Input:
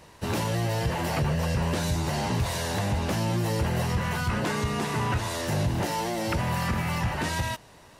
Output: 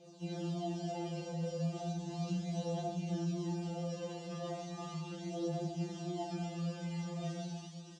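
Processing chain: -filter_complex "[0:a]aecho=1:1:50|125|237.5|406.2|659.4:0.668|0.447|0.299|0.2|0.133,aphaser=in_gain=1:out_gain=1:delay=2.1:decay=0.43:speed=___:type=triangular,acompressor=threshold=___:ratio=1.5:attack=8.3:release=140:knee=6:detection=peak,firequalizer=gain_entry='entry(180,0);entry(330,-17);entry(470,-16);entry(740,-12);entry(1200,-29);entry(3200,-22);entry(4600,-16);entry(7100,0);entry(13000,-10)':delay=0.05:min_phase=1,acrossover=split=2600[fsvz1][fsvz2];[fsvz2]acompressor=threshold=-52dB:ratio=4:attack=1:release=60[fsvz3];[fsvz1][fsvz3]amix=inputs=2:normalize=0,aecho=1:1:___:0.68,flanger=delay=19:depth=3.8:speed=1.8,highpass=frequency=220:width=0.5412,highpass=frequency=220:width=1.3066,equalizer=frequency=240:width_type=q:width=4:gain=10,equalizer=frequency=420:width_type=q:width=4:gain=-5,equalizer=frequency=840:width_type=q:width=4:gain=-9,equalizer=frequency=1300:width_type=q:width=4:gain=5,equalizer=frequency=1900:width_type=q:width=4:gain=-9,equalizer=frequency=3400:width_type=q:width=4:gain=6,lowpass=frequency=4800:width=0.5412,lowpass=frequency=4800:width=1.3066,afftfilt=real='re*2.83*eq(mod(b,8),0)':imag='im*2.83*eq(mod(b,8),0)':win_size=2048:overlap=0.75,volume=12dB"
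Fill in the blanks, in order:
0.36, -33dB, 2.5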